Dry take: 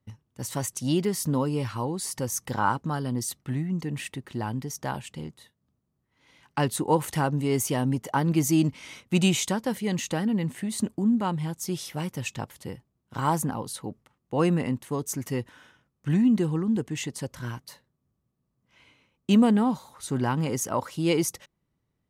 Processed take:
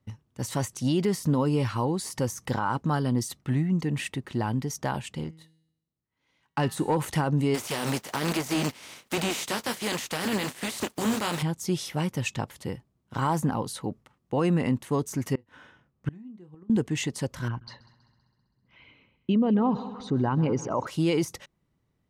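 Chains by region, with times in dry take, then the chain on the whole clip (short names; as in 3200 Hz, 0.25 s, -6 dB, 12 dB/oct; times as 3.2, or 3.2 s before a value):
5.24–6.97 gate -55 dBFS, range -8 dB + sample leveller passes 1 + resonator 160 Hz, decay 0.79 s, mix 50%
7.54–11.41 spectral contrast lowered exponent 0.42 + HPF 140 Hz 6 dB/oct + flange 1.3 Hz, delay 0.9 ms, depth 9.8 ms, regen -33%
15.33–16.7 high shelf 3600 Hz -10.5 dB + doubler 28 ms -11 dB + flipped gate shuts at -20 dBFS, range -28 dB
17.48–20.87 formant sharpening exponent 1.5 + LPF 4800 Hz 24 dB/oct + multi-head echo 65 ms, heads second and third, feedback 54%, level -20.5 dB
whole clip: de-esser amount 60%; high shelf 10000 Hz -7.5 dB; limiter -20 dBFS; gain +3.5 dB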